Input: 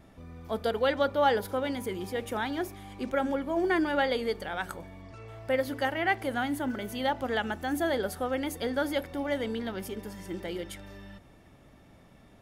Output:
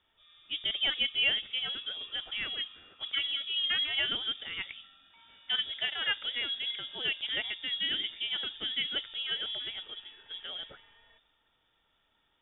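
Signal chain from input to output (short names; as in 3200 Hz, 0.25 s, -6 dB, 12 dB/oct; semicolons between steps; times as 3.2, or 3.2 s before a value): notches 50/100 Hz; inverted band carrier 3600 Hz; low-pass opened by the level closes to 1100 Hz, open at -26 dBFS; gain -4 dB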